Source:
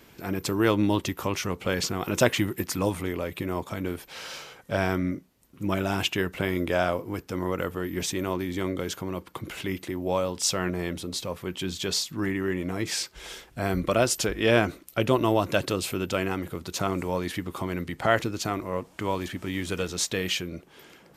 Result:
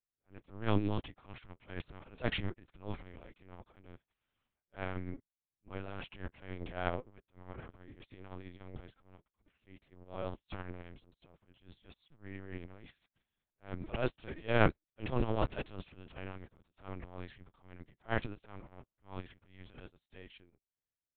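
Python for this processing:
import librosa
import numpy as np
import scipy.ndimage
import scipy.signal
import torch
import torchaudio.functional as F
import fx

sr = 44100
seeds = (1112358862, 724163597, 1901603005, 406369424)

y = fx.law_mismatch(x, sr, coded='A')
y = fx.transient(y, sr, attack_db=-12, sustain_db=fx.steps((0.0, 10.0), (19.88, -1.0)))
y = fx.air_absorb(y, sr, metres=69.0)
y = fx.lpc_vocoder(y, sr, seeds[0], excitation='pitch_kept', order=8)
y = fx.upward_expand(y, sr, threshold_db=-46.0, expansion=2.5)
y = y * librosa.db_to_amplitude(-1.5)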